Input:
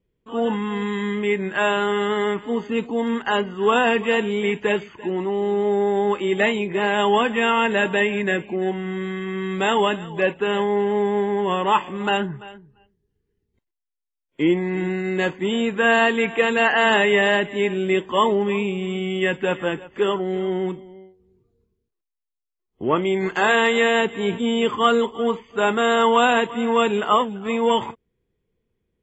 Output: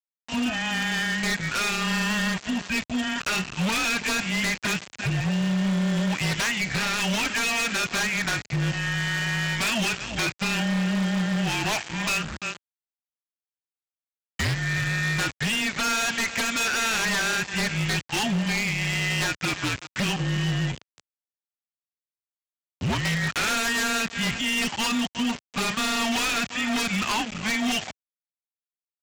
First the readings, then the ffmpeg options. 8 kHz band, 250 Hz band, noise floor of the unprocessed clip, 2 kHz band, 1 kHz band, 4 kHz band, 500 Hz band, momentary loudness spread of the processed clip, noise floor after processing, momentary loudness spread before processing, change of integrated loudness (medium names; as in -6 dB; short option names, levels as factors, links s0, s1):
no reading, -3.5 dB, -81 dBFS, -1.5 dB, -9.0 dB, +1.5 dB, -16.5 dB, 4 LU, under -85 dBFS, 8 LU, -4.0 dB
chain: -af "highshelf=f=1600:t=q:w=1.5:g=8.5,afreqshift=-220,equalizer=f=490:t=o:w=0.4:g=-12.5,acompressor=threshold=0.0447:ratio=3,aresample=16000,aeval=exprs='val(0)*gte(abs(val(0)),0.0188)':c=same,aresample=44100,acontrast=34,highpass=80,aeval=exprs='0.106*(abs(mod(val(0)/0.106+3,4)-2)-1)':c=same"